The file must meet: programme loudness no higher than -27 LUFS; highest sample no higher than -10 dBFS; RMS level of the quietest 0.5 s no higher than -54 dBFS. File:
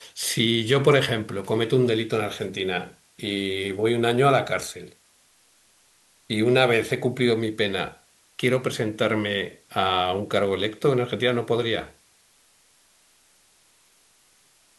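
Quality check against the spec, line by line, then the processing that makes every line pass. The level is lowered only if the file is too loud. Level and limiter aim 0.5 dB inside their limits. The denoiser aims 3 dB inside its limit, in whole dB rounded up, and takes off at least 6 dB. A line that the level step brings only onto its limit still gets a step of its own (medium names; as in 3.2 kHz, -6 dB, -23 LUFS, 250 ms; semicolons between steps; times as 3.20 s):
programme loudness -23.5 LUFS: fail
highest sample -5.0 dBFS: fail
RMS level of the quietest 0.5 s -60 dBFS: pass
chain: trim -4 dB; peak limiter -10.5 dBFS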